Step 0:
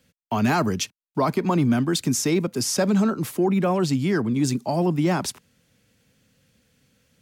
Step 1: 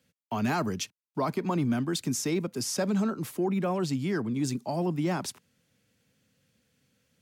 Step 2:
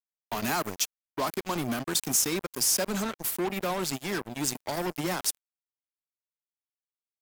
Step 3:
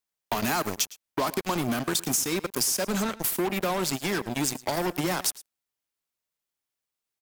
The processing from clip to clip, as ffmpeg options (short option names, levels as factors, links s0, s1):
-af "highpass=75,volume=0.447"
-af "aemphasis=mode=production:type=bsi,acrusher=bits=4:mix=0:aa=0.5"
-af "acompressor=threshold=0.0251:ratio=6,aecho=1:1:110:0.112,volume=2.66"